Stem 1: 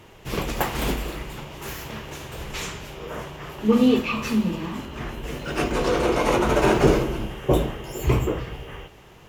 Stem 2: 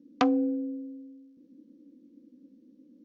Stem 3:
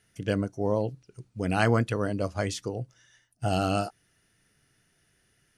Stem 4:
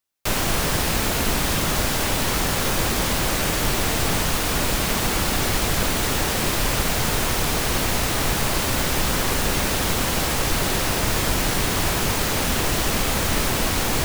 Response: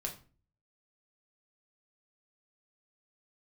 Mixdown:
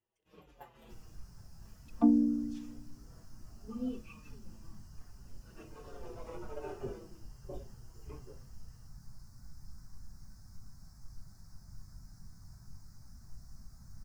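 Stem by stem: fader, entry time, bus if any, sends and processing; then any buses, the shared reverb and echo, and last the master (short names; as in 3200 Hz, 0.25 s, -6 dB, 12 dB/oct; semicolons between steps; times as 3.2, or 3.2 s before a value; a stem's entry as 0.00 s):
-14.0 dB, 0.00 s, send -14 dB, low shelf 290 Hz -6 dB; notch 2200 Hz, Q 17; endless flanger 5.5 ms -1.3 Hz
-2.0 dB, 1.80 s, send -3.5 dB, chord vocoder major triad, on A#3
-15.0 dB, 0.00 s, no send, negative-ratio compressor -37 dBFS; steep high-pass 480 Hz
-20.0 dB, 0.65 s, send -7.5 dB, EQ curve 160 Hz 0 dB, 470 Hz -18 dB, 700 Hz -10 dB, 1500 Hz -7 dB, 3100 Hz -23 dB, 5100 Hz +1 dB, 8400 Hz -4 dB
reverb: on, RT60 0.35 s, pre-delay 4 ms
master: spectral expander 1.5:1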